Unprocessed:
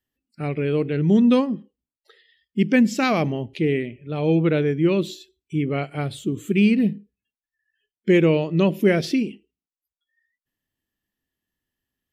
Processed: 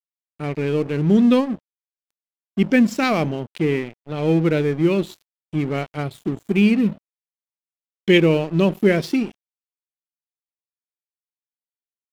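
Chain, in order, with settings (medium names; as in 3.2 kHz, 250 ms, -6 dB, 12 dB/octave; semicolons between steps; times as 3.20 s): 6.92–8.18 s: peaking EQ 3.5 kHz +13 dB 1 oct; crossover distortion -36.5 dBFS; trim +2 dB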